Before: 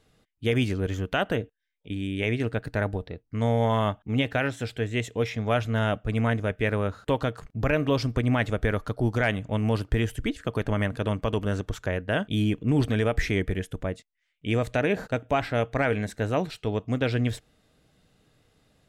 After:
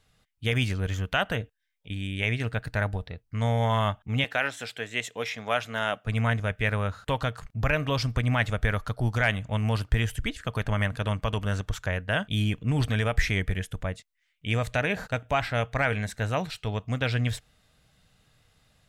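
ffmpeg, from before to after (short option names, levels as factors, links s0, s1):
-filter_complex "[0:a]asettb=1/sr,asplit=3[s0][s1][s2];[s0]atrim=end=4.244[s3];[s1]atrim=start=4.24:end=6.07,asetpts=PTS-STARTPTS,afade=t=in:d=0.004:c=qsin,afade=t=out:st=1.826:d=0.004:c=qsin,highpass=280[s4];[s2]atrim=start=6.066[s5];[s3][s4]acrossfade=d=0.004:c1=hsin:c2=qsin[s6];[s6][s5]acrossfade=d=0.004:c1=qsin:c2=hsin,equalizer=f=340:t=o:w=1.5:g=-12.5,dynaudnorm=f=160:g=3:m=1.41"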